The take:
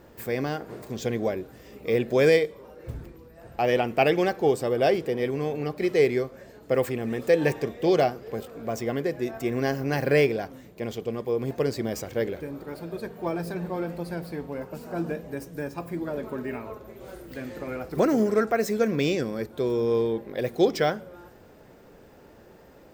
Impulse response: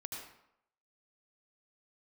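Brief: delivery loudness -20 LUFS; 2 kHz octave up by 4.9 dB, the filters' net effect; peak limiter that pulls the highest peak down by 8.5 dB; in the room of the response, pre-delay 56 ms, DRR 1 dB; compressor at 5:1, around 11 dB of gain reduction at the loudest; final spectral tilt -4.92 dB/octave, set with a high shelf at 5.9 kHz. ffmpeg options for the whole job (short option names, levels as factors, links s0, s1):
-filter_complex "[0:a]equalizer=f=2000:t=o:g=5,highshelf=f=5900:g=7.5,acompressor=threshold=0.0447:ratio=5,alimiter=limit=0.0708:level=0:latency=1,asplit=2[s0][s1];[1:a]atrim=start_sample=2205,adelay=56[s2];[s1][s2]afir=irnorm=-1:irlink=0,volume=1.06[s3];[s0][s3]amix=inputs=2:normalize=0,volume=3.98"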